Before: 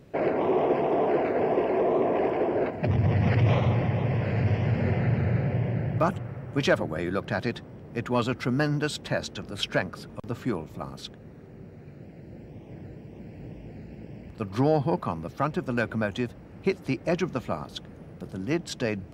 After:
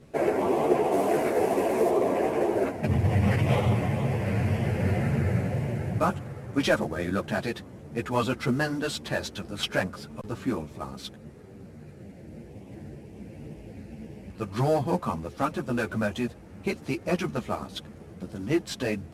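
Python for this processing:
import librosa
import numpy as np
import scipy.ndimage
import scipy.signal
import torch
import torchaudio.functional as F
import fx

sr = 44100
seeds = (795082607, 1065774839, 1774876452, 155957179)

y = fx.cvsd(x, sr, bps=64000)
y = fx.high_shelf(y, sr, hz=5400.0, db=8.0, at=(0.92, 1.9))
y = fx.ensemble(y, sr)
y = y * 10.0 ** (3.5 / 20.0)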